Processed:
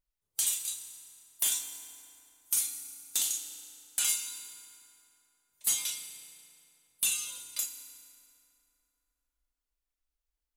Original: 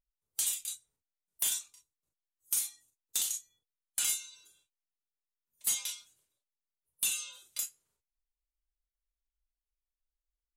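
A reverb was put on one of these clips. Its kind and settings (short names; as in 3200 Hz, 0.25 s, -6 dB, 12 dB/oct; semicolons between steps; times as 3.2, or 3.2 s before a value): FDN reverb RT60 3 s, high-frequency decay 0.65×, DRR 6.5 dB; gain +2 dB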